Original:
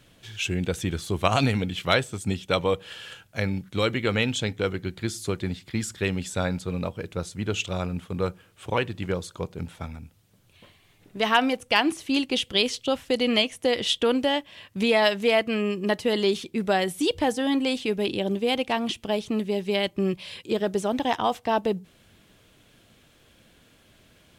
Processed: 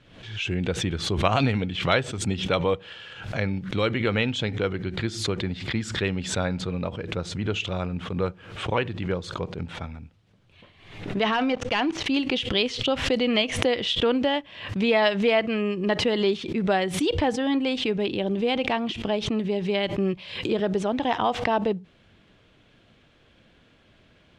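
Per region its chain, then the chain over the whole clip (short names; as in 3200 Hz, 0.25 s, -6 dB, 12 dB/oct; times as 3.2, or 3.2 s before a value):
11.24–12.06 LPF 7200 Hz 24 dB/oct + sample leveller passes 2 + level quantiser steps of 23 dB
whole clip: LPF 3700 Hz 12 dB/oct; backwards sustainer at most 77 dB/s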